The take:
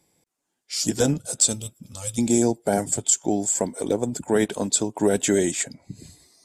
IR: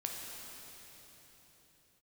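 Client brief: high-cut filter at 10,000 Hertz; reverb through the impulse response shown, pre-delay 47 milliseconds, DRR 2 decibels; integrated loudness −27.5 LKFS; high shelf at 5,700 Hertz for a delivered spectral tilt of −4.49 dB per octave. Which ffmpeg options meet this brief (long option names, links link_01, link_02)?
-filter_complex "[0:a]lowpass=10000,highshelf=frequency=5700:gain=-8,asplit=2[link_01][link_02];[1:a]atrim=start_sample=2205,adelay=47[link_03];[link_02][link_03]afir=irnorm=-1:irlink=0,volume=-3.5dB[link_04];[link_01][link_04]amix=inputs=2:normalize=0,volume=-4.5dB"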